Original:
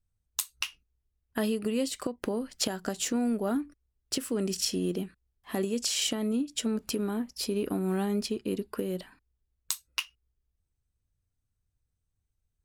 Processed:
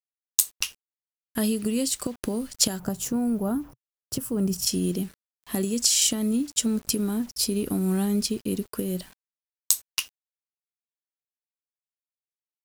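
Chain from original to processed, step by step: tone controls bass +10 dB, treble +13 dB; word length cut 8-bit, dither none; 2.79–4.67 s: graphic EQ 125/250/1000/2000/4000/8000 Hz +11/-4/+4/-7/-9/-9 dB; trim -1 dB

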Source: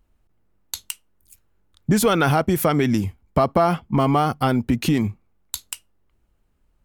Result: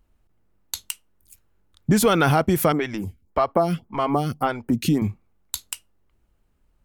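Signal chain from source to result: 2.72–5.02 s: lamp-driven phase shifter 1.8 Hz

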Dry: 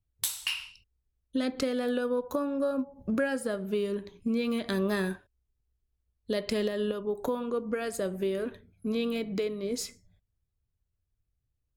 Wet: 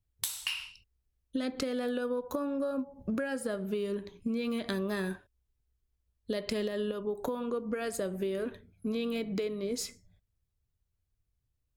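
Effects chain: compression, threshold -29 dBFS, peak gain reduction 6.5 dB

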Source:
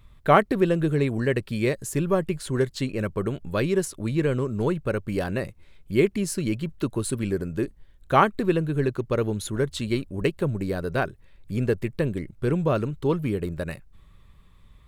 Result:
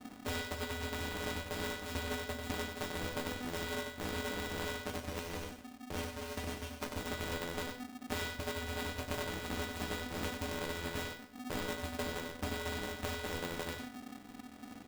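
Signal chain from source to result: sorted samples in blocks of 256 samples; high-pass 55 Hz 6 dB/octave; gate with hold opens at -48 dBFS; bass shelf 140 Hz +11 dB; compression 12:1, threshold -28 dBFS, peak gain reduction 19 dB; 4.83–6.87 s: rotary cabinet horn 7.5 Hz; chord resonator B3 sus4, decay 0.34 s; delay 94 ms -6.5 dB; reverberation RT60 0.60 s, pre-delay 110 ms, DRR 18.5 dB; polarity switched at an audio rate 250 Hz; trim +16.5 dB

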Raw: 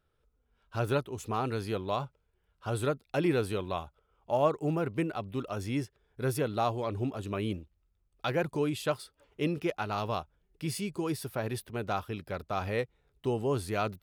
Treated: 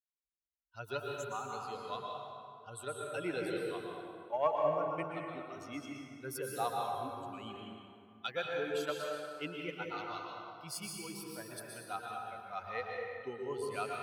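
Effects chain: expander on every frequency bin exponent 2; high-pass 740 Hz 6 dB/octave; Chebyshev shaper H 3 -18 dB, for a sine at -16.5 dBFS; plate-style reverb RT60 2.4 s, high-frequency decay 0.6×, pre-delay 105 ms, DRR -1.5 dB; trim +3.5 dB

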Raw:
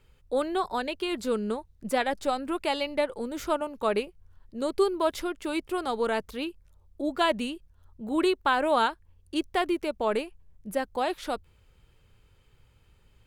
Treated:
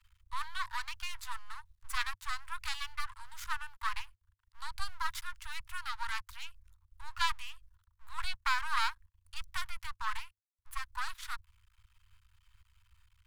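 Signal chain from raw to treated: half-wave rectifier; Chebyshev band-stop 100–960 Hz, order 5

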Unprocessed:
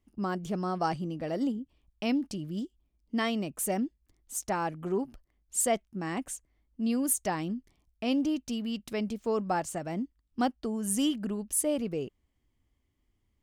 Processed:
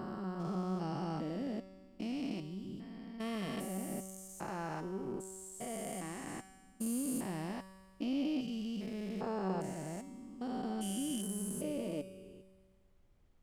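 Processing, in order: spectrogram pixelated in time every 400 ms; feedback comb 190 Hz, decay 1.6 s, mix 80%; added noise brown -78 dBFS; trim +10.5 dB

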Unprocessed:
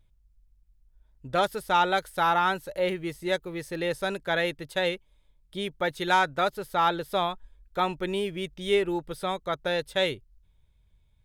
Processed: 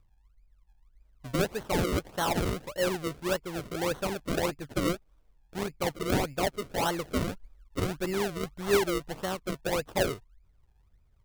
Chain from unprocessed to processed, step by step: peaking EQ 1.2 kHz -8.5 dB 1.2 oct; decimation with a swept rate 36×, swing 100% 1.7 Hz

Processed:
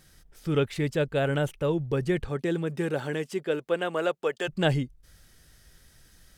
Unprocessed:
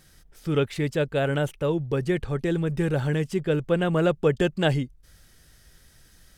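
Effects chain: 2.28–4.47 s: high-pass 150 Hz -> 620 Hz 12 dB/octave; trim -1.5 dB

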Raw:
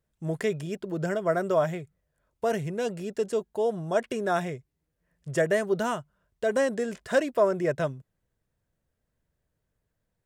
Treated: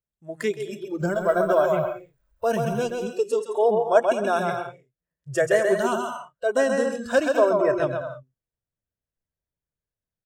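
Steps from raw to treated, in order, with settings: 1.00–2.83 s: companding laws mixed up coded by mu; bouncing-ball echo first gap 130 ms, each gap 0.65×, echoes 5; spectral noise reduction 19 dB; 3.49–4.12 s: peaking EQ 870 Hz +6.5 dB 1.9 oct; trim +3 dB

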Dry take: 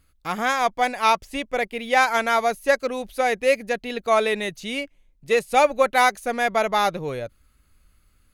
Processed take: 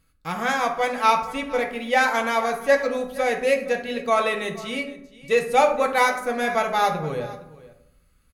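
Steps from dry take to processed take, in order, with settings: delay 467 ms -19 dB; on a send at -2 dB: reverberation RT60 0.75 s, pre-delay 3 ms; on the sum: trim -3 dB

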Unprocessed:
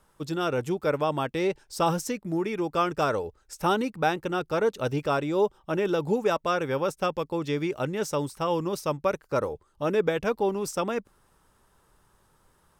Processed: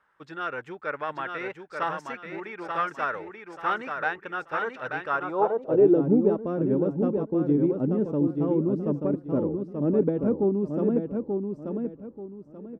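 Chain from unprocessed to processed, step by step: tilt EQ -2.5 dB/octave; Chebyshev shaper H 2 -16 dB, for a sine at -9.5 dBFS; feedback delay 884 ms, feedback 29%, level -5 dB; band-pass sweep 1.7 kHz -> 260 Hz, 5.06–6.06 s; trim +6 dB

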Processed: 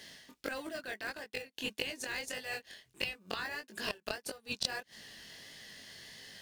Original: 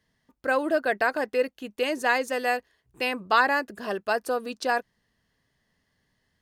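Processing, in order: inverted gate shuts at -21 dBFS, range -29 dB; frequency weighting D; in parallel at -11.5 dB: sample-rate reducer 1.3 kHz, jitter 0%; on the sum: chorus 1.6 Hz, delay 18 ms, depth 6 ms; reverse; compression 6:1, threshold -54 dBFS, peak gain reduction 23.5 dB; reverse; treble shelf 5.3 kHz +9.5 dB; trim +16.5 dB

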